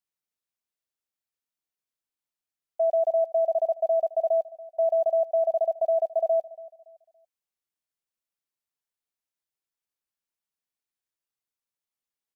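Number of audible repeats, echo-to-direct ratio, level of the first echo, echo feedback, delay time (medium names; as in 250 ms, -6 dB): 2, -19.0 dB, -19.5 dB, 32%, 283 ms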